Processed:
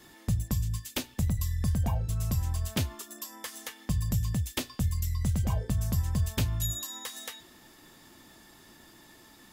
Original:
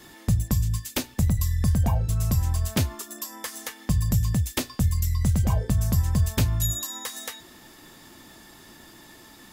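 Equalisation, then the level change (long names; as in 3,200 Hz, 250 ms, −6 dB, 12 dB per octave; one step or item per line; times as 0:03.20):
dynamic equaliser 3,100 Hz, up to +4 dB, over −49 dBFS, Q 2
−6.0 dB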